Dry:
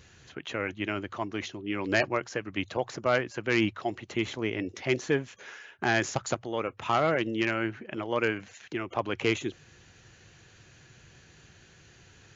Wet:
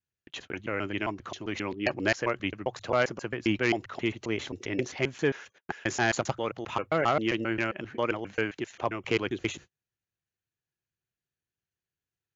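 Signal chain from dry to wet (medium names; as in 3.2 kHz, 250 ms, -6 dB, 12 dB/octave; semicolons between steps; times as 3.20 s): slices played last to first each 133 ms, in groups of 2; gate -45 dBFS, range -39 dB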